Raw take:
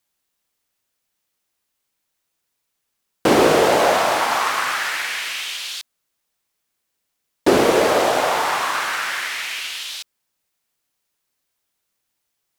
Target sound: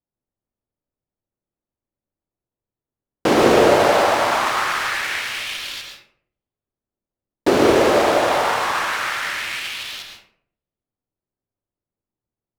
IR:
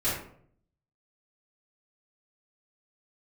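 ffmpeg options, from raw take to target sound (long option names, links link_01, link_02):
-filter_complex "[0:a]adynamicsmooth=sensitivity=8:basefreq=580,asplit=2[link_01][link_02];[1:a]atrim=start_sample=2205,adelay=108[link_03];[link_02][link_03]afir=irnorm=-1:irlink=0,volume=-12dB[link_04];[link_01][link_04]amix=inputs=2:normalize=0,volume=-1.5dB"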